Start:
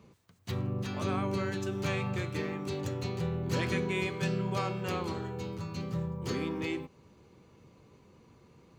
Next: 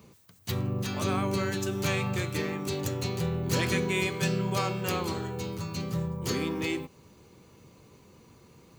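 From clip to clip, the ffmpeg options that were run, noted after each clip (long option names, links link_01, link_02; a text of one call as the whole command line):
ffmpeg -i in.wav -af "aemphasis=mode=production:type=50kf,volume=3dB" out.wav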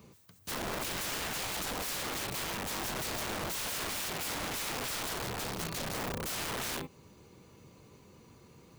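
ffmpeg -i in.wav -af "aeval=exprs='(mod(31.6*val(0)+1,2)-1)/31.6':channel_layout=same,volume=-1.5dB" out.wav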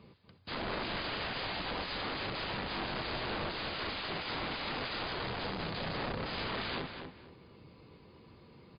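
ffmpeg -i in.wav -filter_complex "[0:a]asplit=2[link_01][link_02];[link_02]adelay=240,lowpass=frequency=3700:poles=1,volume=-6dB,asplit=2[link_03][link_04];[link_04]adelay=240,lowpass=frequency=3700:poles=1,volume=0.24,asplit=2[link_05][link_06];[link_06]adelay=240,lowpass=frequency=3700:poles=1,volume=0.24[link_07];[link_01][link_03][link_05][link_07]amix=inputs=4:normalize=0" -ar 11025 -c:a libmp3lame -b:a 24k out.mp3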